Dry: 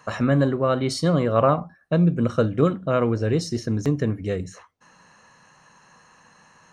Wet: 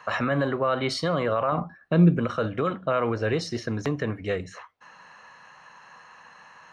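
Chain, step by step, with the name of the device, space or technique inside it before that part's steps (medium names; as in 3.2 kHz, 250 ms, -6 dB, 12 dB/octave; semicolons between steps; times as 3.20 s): DJ mixer with the lows and highs turned down (three-band isolator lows -12 dB, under 570 Hz, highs -16 dB, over 4.2 kHz; peak limiter -21.5 dBFS, peak gain reduction 12 dB); 1.52–2.19 s: resonant low shelf 450 Hz +6.5 dB, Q 1.5; trim +6 dB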